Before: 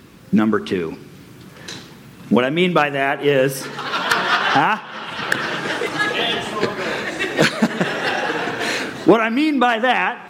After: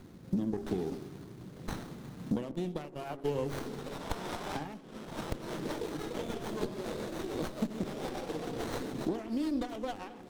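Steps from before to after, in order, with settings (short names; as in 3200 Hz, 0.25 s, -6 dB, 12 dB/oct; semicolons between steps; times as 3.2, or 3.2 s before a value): compressor 6:1, threshold -24 dBFS, peak gain reduction 16 dB; 2.51–3.36 gate -28 dBFS, range -20 dB; resonant high shelf 3100 Hz +8 dB, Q 1.5; de-hum 136.6 Hz, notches 10; rotary speaker horn 0.85 Hz, later 7 Hz, at 4.95; bell 1800 Hz -14 dB 1.7 oct; narrowing echo 85 ms, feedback 79%, band-pass 320 Hz, level -16 dB; crackling interface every 0.48 s, samples 128, repeat, from 0.63; running maximum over 17 samples; gain -3 dB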